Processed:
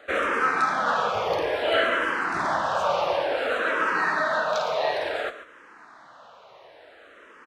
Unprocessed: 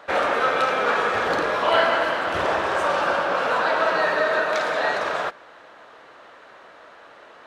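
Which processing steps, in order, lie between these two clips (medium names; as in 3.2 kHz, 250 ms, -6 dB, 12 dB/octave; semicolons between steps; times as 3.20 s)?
1.13–1.57 s: band-stop 4 kHz, Q 6.5; multi-tap echo 114/142 ms -16/-15.5 dB; barber-pole phaser -0.57 Hz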